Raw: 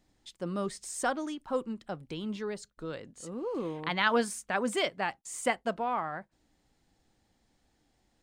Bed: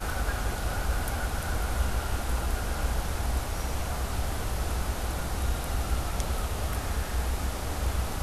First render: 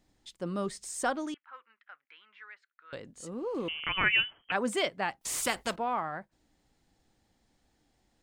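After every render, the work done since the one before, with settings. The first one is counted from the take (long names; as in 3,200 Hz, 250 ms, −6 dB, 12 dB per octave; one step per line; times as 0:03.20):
0:01.34–0:02.93: flat-topped band-pass 1,800 Hz, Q 1.7
0:03.68–0:04.52: voice inversion scrambler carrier 3,200 Hz
0:05.21–0:05.76: every bin compressed towards the loudest bin 2 to 1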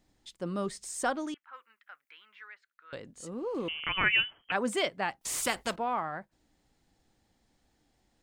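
0:01.53–0:02.48: high-shelf EQ 6,100 Hz +9.5 dB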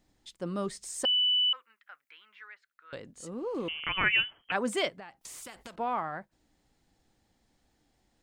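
0:01.05–0:01.53: beep over 2,980 Hz −22.5 dBFS
0:04.89–0:05.77: downward compressor 8 to 1, threshold −42 dBFS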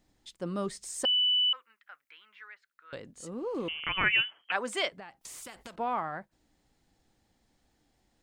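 0:04.21–0:04.92: meter weighting curve A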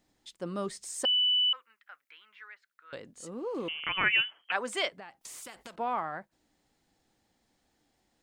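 low-shelf EQ 120 Hz −9.5 dB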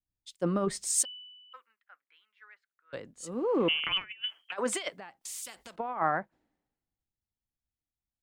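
compressor whose output falls as the input rises −34 dBFS, ratio −0.5
multiband upward and downward expander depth 100%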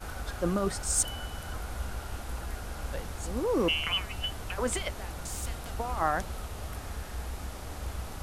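mix in bed −8 dB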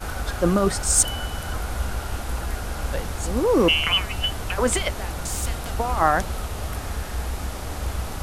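level +9 dB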